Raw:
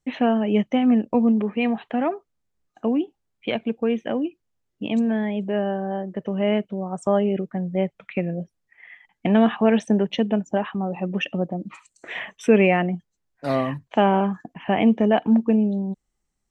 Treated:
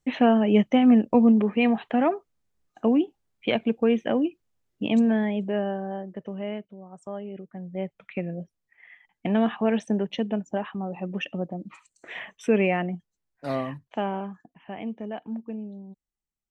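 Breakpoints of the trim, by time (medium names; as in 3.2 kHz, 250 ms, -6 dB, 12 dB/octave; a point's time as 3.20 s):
5.04 s +1 dB
6.29 s -8 dB
6.76 s -15.5 dB
7.26 s -15.5 dB
8.01 s -5.5 dB
13.53 s -5.5 dB
14.65 s -16 dB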